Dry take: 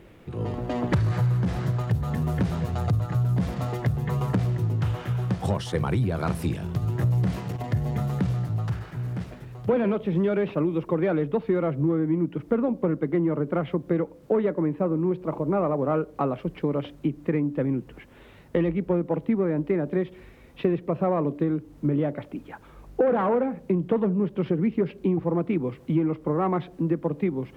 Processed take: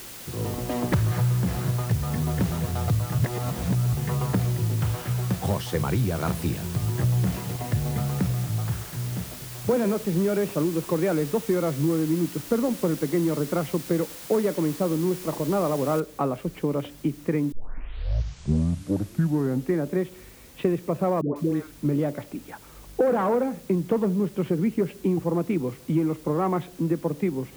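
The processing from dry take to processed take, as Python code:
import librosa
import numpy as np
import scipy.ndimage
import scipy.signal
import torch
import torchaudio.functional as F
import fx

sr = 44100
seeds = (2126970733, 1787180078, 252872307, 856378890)

y = fx.high_shelf(x, sr, hz=3900.0, db=-9.5, at=(8.27, 10.85))
y = fx.noise_floor_step(y, sr, seeds[0], at_s=16.0, before_db=-41, after_db=-52, tilt_db=0.0)
y = fx.dispersion(y, sr, late='highs', ms=149.0, hz=700.0, at=(21.21, 21.72))
y = fx.edit(y, sr, fx.reverse_span(start_s=3.18, length_s=0.75),
    fx.tape_start(start_s=17.52, length_s=2.36), tone=tone)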